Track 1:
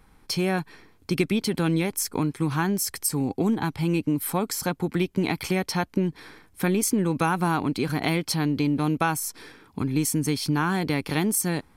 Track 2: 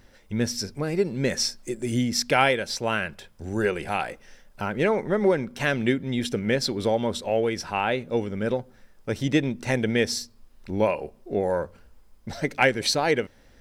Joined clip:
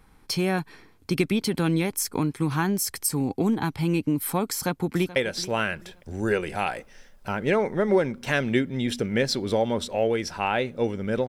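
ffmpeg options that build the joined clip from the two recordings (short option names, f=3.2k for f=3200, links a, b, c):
-filter_complex "[0:a]apad=whole_dur=11.28,atrim=end=11.28,atrim=end=5.162[a];[1:a]atrim=start=2.488:end=8.61[b];[a][b]acrossfade=d=0.004:c1=hsin:c2=hsin,asplit=2[c][d];[d]afade=t=in:st=4.52:d=0.01,afade=t=out:st=5.16:d=0.01,aecho=0:1:430|860|1290:0.149624|0.0523682|0.0183289[e];[c][e]amix=inputs=2:normalize=0"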